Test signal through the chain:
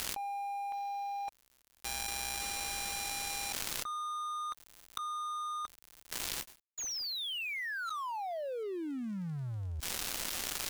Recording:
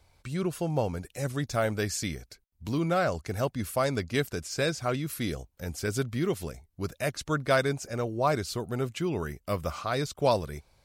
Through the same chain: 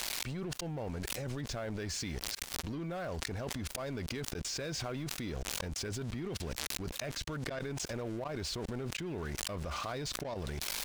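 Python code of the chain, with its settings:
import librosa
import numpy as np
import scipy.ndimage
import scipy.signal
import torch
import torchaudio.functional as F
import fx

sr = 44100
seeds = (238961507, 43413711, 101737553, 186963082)

y = x + 0.5 * 10.0 ** (-27.0 / 20.0) * np.diff(np.sign(x), prepend=np.sign(x[:1]))
y = fx.leveller(y, sr, passes=2)
y = scipy.signal.sosfilt(scipy.signal.butter(2, 4300.0, 'lowpass', fs=sr, output='sos'), y)
y = fx.notch(y, sr, hz=1300.0, q=17.0)
y = fx.level_steps(y, sr, step_db=18)
y = np.sign(y) * np.maximum(np.abs(y) - 10.0 ** (-48.0 / 20.0), 0.0)
y = fx.peak_eq(y, sr, hz=110.0, db=-6.5, octaves=1.3)
y = fx.auto_swell(y, sr, attack_ms=582.0)
y = fx.low_shelf(y, sr, hz=170.0, db=8.5)
y = fx.env_flatten(y, sr, amount_pct=100)
y = y * librosa.db_to_amplitude(-3.5)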